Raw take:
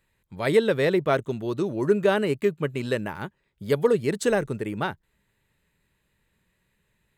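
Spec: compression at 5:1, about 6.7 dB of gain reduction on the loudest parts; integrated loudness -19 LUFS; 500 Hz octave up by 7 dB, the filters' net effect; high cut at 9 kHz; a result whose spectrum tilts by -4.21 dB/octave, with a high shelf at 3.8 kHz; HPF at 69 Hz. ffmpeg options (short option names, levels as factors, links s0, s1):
-af "highpass=69,lowpass=9000,equalizer=f=500:t=o:g=8.5,highshelf=f=3800:g=-4,acompressor=threshold=0.178:ratio=5,volume=1.5"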